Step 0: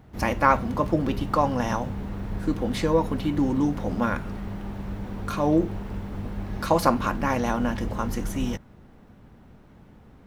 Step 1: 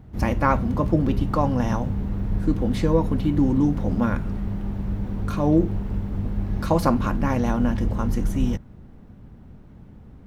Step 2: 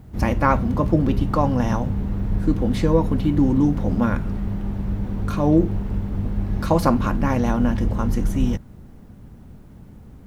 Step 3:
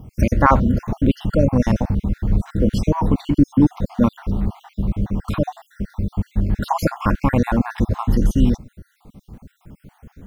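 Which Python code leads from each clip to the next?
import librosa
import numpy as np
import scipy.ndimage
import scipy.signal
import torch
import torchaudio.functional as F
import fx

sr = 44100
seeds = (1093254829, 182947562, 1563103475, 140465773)

y1 = fx.low_shelf(x, sr, hz=330.0, db=11.5)
y1 = F.gain(torch.from_numpy(y1), -3.5).numpy()
y2 = fx.quant_dither(y1, sr, seeds[0], bits=12, dither='triangular')
y2 = F.gain(torch.from_numpy(y2), 2.0).numpy()
y3 = fx.spec_dropout(y2, sr, seeds[1], share_pct=53)
y3 = F.gain(torch.from_numpy(y3), 5.0).numpy()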